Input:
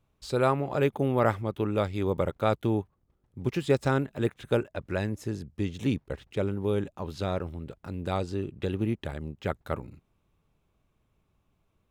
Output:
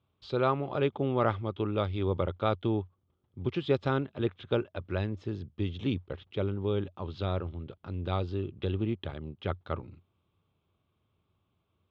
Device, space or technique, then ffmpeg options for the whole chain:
guitar cabinet: -af "highpass=85,equalizer=frequency=90:width_type=q:width=4:gain=10,equalizer=frequency=360:width_type=q:width=4:gain=3,equalizer=frequency=1200:width_type=q:width=4:gain=4,equalizer=frequency=1800:width_type=q:width=4:gain=-4,equalizer=frequency=3300:width_type=q:width=4:gain=8,lowpass=frequency=4300:width=0.5412,lowpass=frequency=4300:width=1.3066,volume=-4dB"

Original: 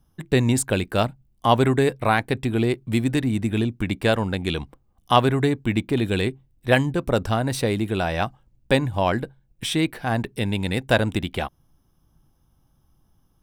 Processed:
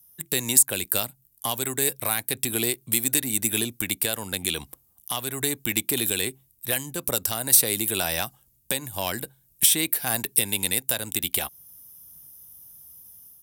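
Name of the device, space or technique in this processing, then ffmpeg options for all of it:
FM broadcast chain: -filter_complex "[0:a]highpass=56,dynaudnorm=framelen=100:gausssize=5:maxgain=8dB,acrossover=split=280|2500[link_01][link_02][link_03];[link_01]acompressor=threshold=-26dB:ratio=4[link_04];[link_02]acompressor=threshold=-16dB:ratio=4[link_05];[link_03]acompressor=threshold=-26dB:ratio=4[link_06];[link_04][link_05][link_06]amix=inputs=3:normalize=0,aemphasis=mode=production:type=75fm,alimiter=limit=-6dB:level=0:latency=1:release=323,asoftclip=type=hard:threshold=-9dB,lowpass=frequency=15000:width=0.5412,lowpass=frequency=15000:width=1.3066,aemphasis=mode=production:type=75fm,volume=-9dB"

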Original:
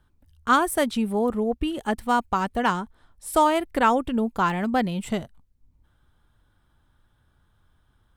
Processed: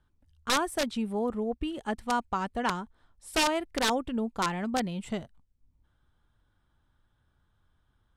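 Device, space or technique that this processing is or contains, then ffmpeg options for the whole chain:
overflowing digital effects unit: -af "aeval=exprs='(mod(3.76*val(0)+1,2)-1)/3.76':channel_layout=same,lowpass=8700,volume=-6.5dB"

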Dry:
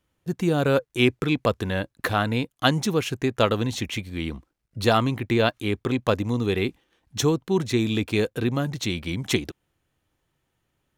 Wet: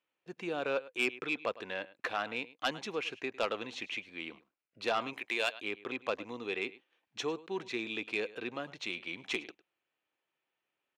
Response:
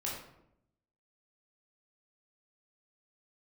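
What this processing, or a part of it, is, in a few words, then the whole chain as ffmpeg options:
intercom: -filter_complex "[0:a]asettb=1/sr,asplit=3[link_01][link_02][link_03];[link_01]atrim=end=5.134[link_04];[link_02]atrim=start=5.13:end=5.56,asetpts=PTS-STARTPTS,afade=type=in:duration=0.004:curve=qsin,afade=type=out:start_time=0.426:duration=0.004:curve=qsin,aemphasis=mode=production:type=riaa[link_05];[link_03]atrim=start=5.556[link_06];[link_04][link_05]acrossfade=duration=0.004:curve1=hsin:curve2=qsin[link_07];[link_07][link_06]acrossfade=duration=0.004:curve1=qsin:curve2=hsin,highpass=430,lowpass=4300,equalizer=frequency=2500:width_type=o:width=0.36:gain=7.5,aecho=1:1:104:0.106,asoftclip=type=tanh:threshold=-12dB,volume=-9dB"

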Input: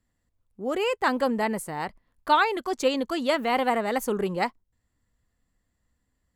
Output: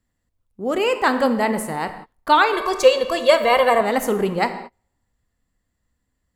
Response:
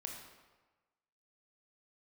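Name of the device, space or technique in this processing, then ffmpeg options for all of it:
keyed gated reverb: -filter_complex "[0:a]asplit=3[link_01][link_02][link_03];[1:a]atrim=start_sample=2205[link_04];[link_02][link_04]afir=irnorm=-1:irlink=0[link_05];[link_03]apad=whole_len=280036[link_06];[link_05][link_06]sidechaingate=range=-33dB:threshold=-50dB:ratio=16:detection=peak,volume=1.5dB[link_07];[link_01][link_07]amix=inputs=2:normalize=0,asettb=1/sr,asplit=3[link_08][link_09][link_10];[link_08]atrim=end=2.534[link_11];[link_09]atrim=start=2.53:end=3.81,asetpts=PTS-STARTPTS,afade=type=in:duration=0.004:curve=qsin,afade=type=out:start_time=1.276:duration=0.004:curve=qsin,aecho=1:1:1.8:0.94,atrim=end_sample=56448[link_12];[link_10]atrim=start=3.806[link_13];[link_11][link_12]acrossfade=duration=0.004:curve1=hsin:curve2=qsin[link_14];[link_14][link_13]acrossfade=duration=0.004:curve1=qsin:curve2=hsin,volume=1dB"

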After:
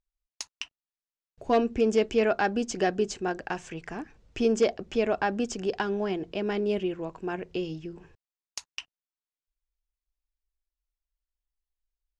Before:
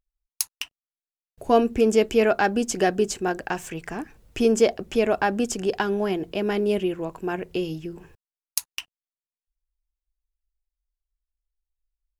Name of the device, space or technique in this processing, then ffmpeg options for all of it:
synthesiser wavefolder: -af "aeval=exprs='0.355*(abs(mod(val(0)/0.355+3,4)-2)-1)':channel_layout=same,lowpass=frequency=6800:width=0.5412,lowpass=frequency=6800:width=1.3066,volume=-4.5dB"

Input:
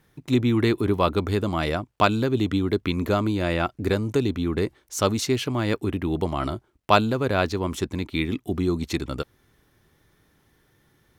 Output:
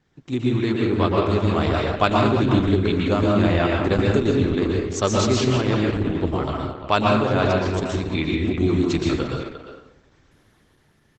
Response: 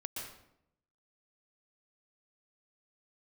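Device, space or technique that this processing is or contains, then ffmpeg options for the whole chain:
speakerphone in a meeting room: -filter_complex "[1:a]atrim=start_sample=2205[link_01];[0:a][link_01]afir=irnorm=-1:irlink=0,asplit=2[link_02][link_03];[link_03]adelay=350,highpass=300,lowpass=3400,asoftclip=type=hard:threshold=-15dB,volume=-9dB[link_04];[link_02][link_04]amix=inputs=2:normalize=0,dynaudnorm=framelen=240:gausssize=9:maxgain=6dB" -ar 48000 -c:a libopus -b:a 12k

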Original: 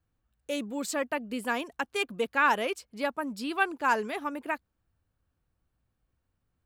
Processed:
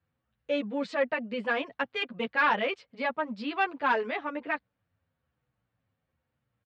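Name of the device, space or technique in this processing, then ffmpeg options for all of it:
barber-pole flanger into a guitar amplifier: -filter_complex "[0:a]asplit=2[link_01][link_02];[link_02]adelay=9,afreqshift=-1[link_03];[link_01][link_03]amix=inputs=2:normalize=1,asoftclip=type=tanh:threshold=-22.5dB,highpass=110,equalizer=frequency=120:width_type=q:width=4:gain=4,equalizer=frequency=360:width_type=q:width=4:gain=-7,equalizer=frequency=520:width_type=q:width=4:gain=4,equalizer=frequency=2000:width_type=q:width=4:gain=4,lowpass=frequency=3900:width=0.5412,lowpass=frequency=3900:width=1.3066,volume=4.5dB"

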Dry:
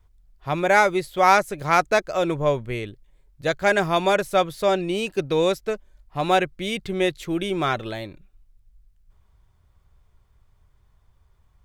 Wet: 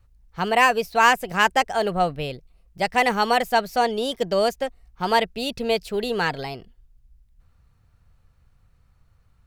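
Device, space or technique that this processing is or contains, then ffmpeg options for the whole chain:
nightcore: -af "asetrate=54243,aresample=44100"

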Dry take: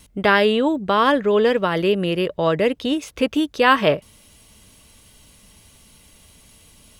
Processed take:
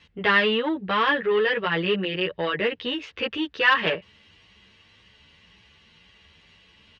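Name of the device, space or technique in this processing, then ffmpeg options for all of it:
barber-pole flanger into a guitar amplifier: -filter_complex "[0:a]asplit=2[link_01][link_02];[link_02]adelay=10.9,afreqshift=1.9[link_03];[link_01][link_03]amix=inputs=2:normalize=1,asoftclip=type=tanh:threshold=-14.5dB,highpass=77,equalizer=frequency=130:width_type=q:width=4:gain=-7,equalizer=frequency=260:width_type=q:width=4:gain=-9,equalizer=frequency=630:width_type=q:width=4:gain=-7,equalizer=frequency=1800:width_type=q:width=4:gain=9,equalizer=frequency=2800:width_type=q:width=4:gain=6,lowpass=frequency=4400:width=0.5412,lowpass=frequency=4400:width=1.3066"

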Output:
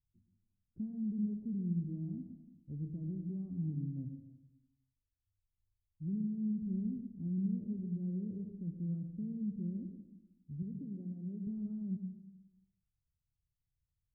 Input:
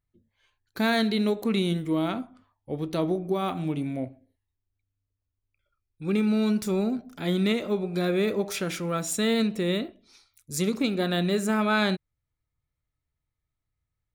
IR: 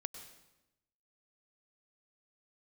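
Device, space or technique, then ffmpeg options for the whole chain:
club heard from the street: -filter_complex "[0:a]asettb=1/sr,asplit=3[link_01][link_02][link_03];[link_01]atrim=end=10.624[link_04];[link_02]atrim=start=10.62:end=11.47,asetpts=PTS-STARTPTS,afade=type=in:duration=0.004:curve=qsin,afade=type=out:start_time=0.846:duration=0.004:curve=qsin,highpass=frequency=340:poles=1[link_05];[link_03]atrim=start=11.466[link_06];[link_04][link_05]acrossfade=duration=0.004:curve1=hsin:curve2=qsin[link_07];[link_07][link_06]acrossfade=duration=0.004:curve1=qsin:curve2=hsin,alimiter=limit=-21.5dB:level=0:latency=1:release=65,lowpass=frequency=200:width=0.5412,lowpass=frequency=200:width=1.3066[link_08];[1:a]atrim=start_sample=2205[link_09];[link_08][link_09]afir=irnorm=-1:irlink=0,tiltshelf=frequency=1200:gain=-9.5,volume=8.5dB"

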